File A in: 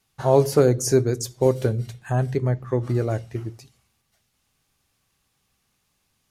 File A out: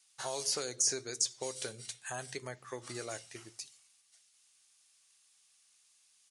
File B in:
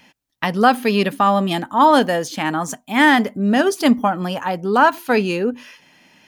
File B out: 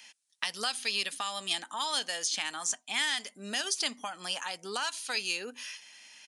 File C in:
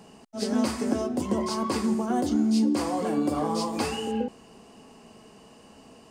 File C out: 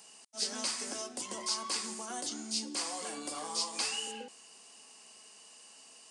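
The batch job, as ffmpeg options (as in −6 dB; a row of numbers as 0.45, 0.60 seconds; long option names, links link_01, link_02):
-filter_complex "[0:a]aderivative,aresample=22050,aresample=44100,acrossover=split=3000|6800[link_01][link_02][link_03];[link_01]acompressor=threshold=-45dB:ratio=4[link_04];[link_02]acompressor=threshold=-38dB:ratio=4[link_05];[link_03]acompressor=threshold=-52dB:ratio=4[link_06];[link_04][link_05][link_06]amix=inputs=3:normalize=0,volume=8dB"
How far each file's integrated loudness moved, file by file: −14.0, −14.5, −8.5 LU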